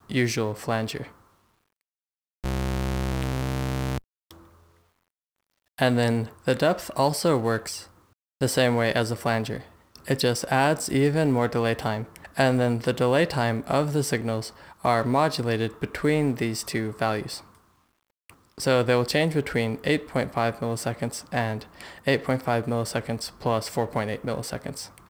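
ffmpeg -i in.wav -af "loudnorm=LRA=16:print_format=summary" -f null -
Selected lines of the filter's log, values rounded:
Input Integrated:    -25.8 LUFS
Input True Peak:      -6.8 dBTP
Input LRA:             6.0 LU
Input Threshold:     -36.5 LUFS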